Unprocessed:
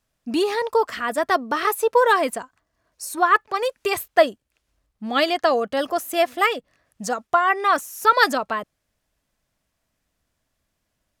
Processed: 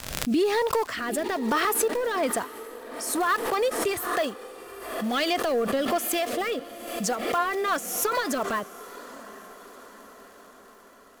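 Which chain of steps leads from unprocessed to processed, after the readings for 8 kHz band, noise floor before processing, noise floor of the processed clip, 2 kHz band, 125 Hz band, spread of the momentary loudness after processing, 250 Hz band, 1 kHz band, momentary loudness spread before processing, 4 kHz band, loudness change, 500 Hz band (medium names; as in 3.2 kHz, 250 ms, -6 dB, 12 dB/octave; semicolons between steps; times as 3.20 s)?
+4.0 dB, -76 dBFS, -51 dBFS, -6.5 dB, no reading, 18 LU, 0.0 dB, -7.5 dB, 11 LU, -3.5 dB, -5.5 dB, -4.5 dB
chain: block-companded coder 5-bit; in parallel at -2 dB: compression, threshold -27 dBFS, peak gain reduction 16 dB; on the sum: peak limiter -12.5 dBFS, peak gain reduction 11 dB; saturation -15.5 dBFS, distortion -18 dB; rotary cabinet horn 1.1 Hz, later 7.5 Hz, at 6.92 s; crackle 60 per s -44 dBFS; on a send: echo that smears into a reverb 820 ms, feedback 59%, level -16 dB; on the sum: swell ahead of each attack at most 55 dB/s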